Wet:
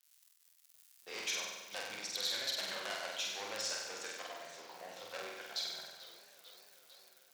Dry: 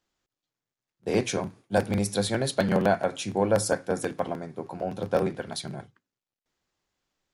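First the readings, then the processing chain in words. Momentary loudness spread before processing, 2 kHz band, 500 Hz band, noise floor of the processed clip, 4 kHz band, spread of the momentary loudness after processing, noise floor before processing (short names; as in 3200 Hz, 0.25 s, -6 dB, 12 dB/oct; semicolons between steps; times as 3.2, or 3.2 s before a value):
11 LU, -7.5 dB, -21.5 dB, -68 dBFS, 0.0 dB, 20 LU, under -85 dBFS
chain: Bessel low-pass 3700 Hz, order 8; low shelf 360 Hz -11 dB; crackle 86/s -50 dBFS; AGC gain up to 3.5 dB; soft clip -23 dBFS, distortion -8 dB; differentiator; flutter echo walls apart 8.2 m, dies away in 1.1 s; warbling echo 0.445 s, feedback 70%, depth 143 cents, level -16.5 dB; gain +2.5 dB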